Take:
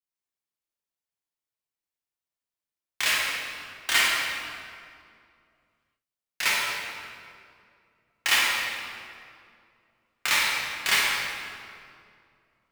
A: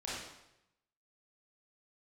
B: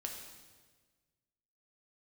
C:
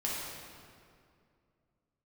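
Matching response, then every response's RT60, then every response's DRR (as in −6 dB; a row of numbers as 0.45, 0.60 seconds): C; 0.85, 1.4, 2.3 seconds; −8.5, 1.0, −6.0 decibels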